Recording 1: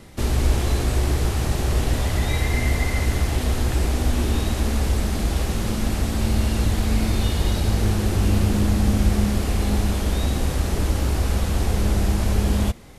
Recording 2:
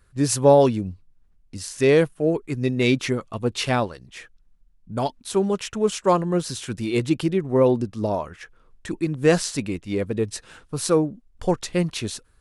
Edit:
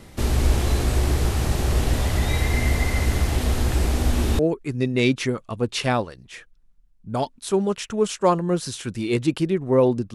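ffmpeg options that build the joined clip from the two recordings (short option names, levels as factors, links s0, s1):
-filter_complex "[0:a]apad=whole_dur=10.14,atrim=end=10.14,atrim=end=4.392[s0];[1:a]atrim=start=2.218:end=7.97[s1];[s0][s1]acrossfade=d=0.004:c1=hsin:c2=hsin"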